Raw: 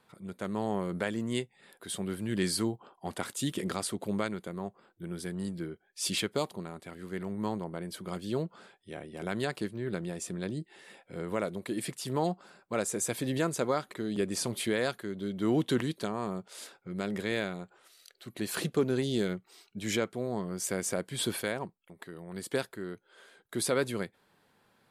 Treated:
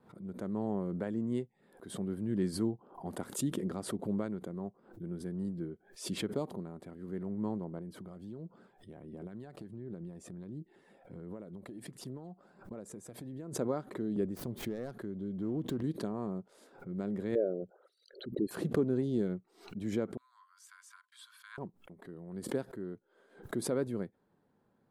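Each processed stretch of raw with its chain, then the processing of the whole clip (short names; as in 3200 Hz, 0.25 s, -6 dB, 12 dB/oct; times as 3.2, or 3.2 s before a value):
2.74–3.4 high shelf 9900 Hz +10.5 dB + mismatched tape noise reduction decoder only
7.78–13.55 compressor 5:1, threshold -40 dBFS + phaser 1.4 Hz, delay 1.7 ms, feedback 32%
14.25–15.84 self-modulated delay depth 0.14 ms + low shelf 120 Hz +8 dB + compressor 2:1, threshold -35 dBFS
17.35–18.51 formant sharpening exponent 3 + bell 560 Hz +8.5 dB 1.4 oct
20.17–21.58 gate -43 dBFS, range -56 dB + rippled Chebyshev high-pass 1000 Hz, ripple 6 dB
whole clip: EQ curve 100 Hz 0 dB, 260 Hz +3 dB, 400 Hz 0 dB, 840 Hz -5 dB, 1700 Hz -11 dB, 2500 Hz -17 dB; backwards sustainer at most 130 dB/s; gain -3 dB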